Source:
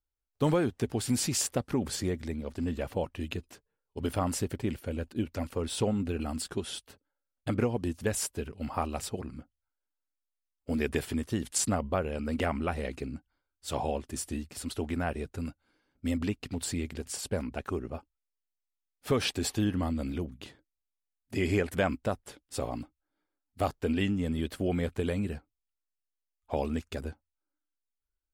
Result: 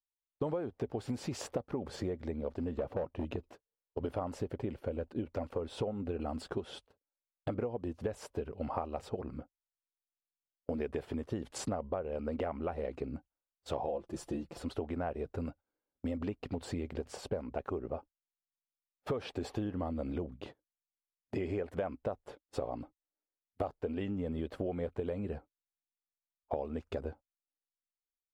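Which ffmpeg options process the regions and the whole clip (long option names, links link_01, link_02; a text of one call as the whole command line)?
ffmpeg -i in.wav -filter_complex "[0:a]asettb=1/sr,asplit=3[link_01][link_02][link_03];[link_01]atrim=end=2.784[link_04];[link_02]atrim=start=2.78:end=3.36,asetpts=PTS-STARTPTS,afade=type=in:duration=0.004:curve=qsin,afade=type=out:start_time=0.576:duration=0.004:curve=qsin,equalizer=frequency=210:width=0.37:gain=6,asoftclip=type=hard:threshold=-25dB[link_05];[link_03]atrim=start=3.356[link_06];[link_04][link_05]acrossfade=duration=0.004:curve1=hsin:curve2=qsin[link_07];[link_07][link_06]acrossfade=duration=0.004:curve1=qsin:curve2=hsin,asettb=1/sr,asplit=3[link_08][link_09][link_10];[link_08]atrim=end=13.864[link_11];[link_09]atrim=start=13.86:end=14.6,asetpts=PTS-STARTPTS,afade=type=in:duration=0.004:curve=qsin,afade=type=out:start_time=0.736:duration=0.004:curve=qsin,equalizer=frequency=2100:width=1.5:gain=-4,aecho=1:1:5.9:0.65,atrim=end_sample=32634[link_12];[link_10]atrim=start=14.596[link_13];[link_11][link_12]acrossfade=duration=0.004:curve1=hsin:curve2=qsin[link_14];[link_14][link_13]acrossfade=duration=0.004:curve1=qsin:curve2=hsin,agate=range=-21dB:threshold=-48dB:ratio=16:detection=peak,firequalizer=gain_entry='entry(230,0);entry(330,3);entry(500,9);entry(1700,-3);entry(9000,-18)':delay=0.05:min_phase=1,acompressor=threshold=-33dB:ratio=6" out.wav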